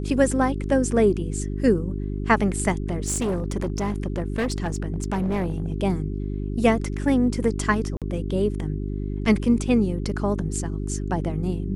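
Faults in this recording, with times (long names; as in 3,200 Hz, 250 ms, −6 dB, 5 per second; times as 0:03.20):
mains hum 50 Hz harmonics 8 −28 dBFS
0:02.88–0:05.72: clipping −20.5 dBFS
0:07.97–0:08.02: drop-out 47 ms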